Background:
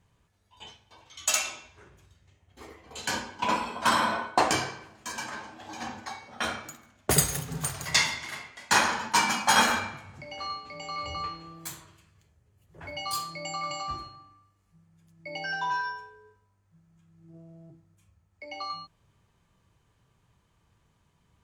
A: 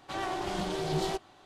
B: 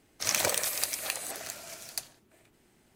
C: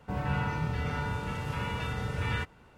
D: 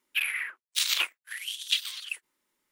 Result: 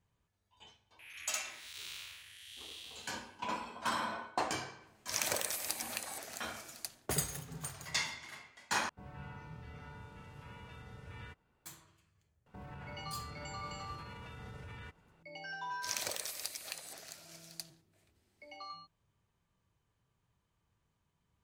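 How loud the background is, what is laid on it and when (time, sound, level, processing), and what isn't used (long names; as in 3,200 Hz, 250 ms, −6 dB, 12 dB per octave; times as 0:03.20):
background −11.5 dB
0:00.99: mix in D −12 dB + spectrum smeared in time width 409 ms
0:04.87: mix in B −7 dB
0:08.89: overwrite with C −18 dB
0:12.46: mix in C −10 dB + brickwall limiter −30.5 dBFS
0:15.62: mix in B −12.5 dB + parametric band 4,500 Hz +5.5 dB 1 octave
not used: A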